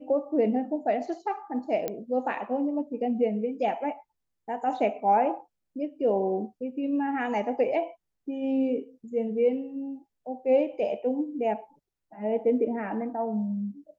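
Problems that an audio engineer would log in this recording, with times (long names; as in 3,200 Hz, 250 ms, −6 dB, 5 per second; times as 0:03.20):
0:01.88: click −16 dBFS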